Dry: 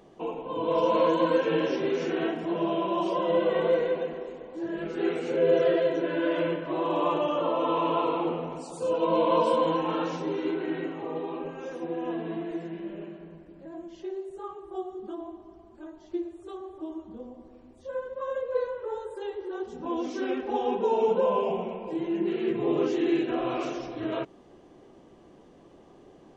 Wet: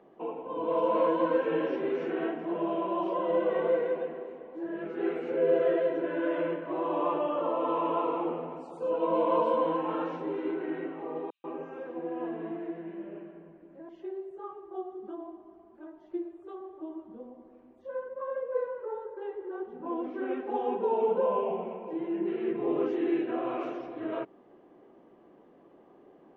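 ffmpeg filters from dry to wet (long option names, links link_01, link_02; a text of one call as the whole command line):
ffmpeg -i in.wav -filter_complex "[0:a]asettb=1/sr,asplit=3[link_01][link_02][link_03];[link_01]atrim=end=11.304[link_04];[link_02]atrim=start=11.3:end=13.89,asetpts=PTS-STARTPTS,afade=type=in:duration=0.004:curve=qsin,afade=type=out:start_time=2.586:duration=0.004:curve=qsin,acrossover=split=5100[link_05][link_06];[link_05]adelay=140[link_07];[link_07][link_06]amix=inputs=2:normalize=0,atrim=end_sample=114219[link_08];[link_03]atrim=start=13.886[link_09];[link_04][link_08]acrossfade=duration=0.004:curve1=hsin:curve2=qsin[link_10];[link_10][link_09]acrossfade=duration=0.004:curve1=qsin:curve2=hsin,asettb=1/sr,asplit=3[link_11][link_12][link_13];[link_11]atrim=end=18.034[link_14];[link_12]atrim=start=18.03:end=20.31,asetpts=PTS-STARTPTS,afade=type=in:duration=0.004:curve=qsin,afade=type=out:start_time=2.276:duration=0.004:curve=qsin,lowpass=2600[link_15];[link_13]atrim=start=20.306[link_16];[link_14][link_15]acrossfade=duration=0.004:curve1=hsin:curve2=qsin[link_17];[link_17][link_16]acrossfade=duration=0.004:curve1=qsin:curve2=hsin,acrossover=split=180 2500:gain=0.178 1 0.0891[link_18][link_19][link_20];[link_18][link_19][link_20]amix=inputs=3:normalize=0,volume=-2.5dB" out.wav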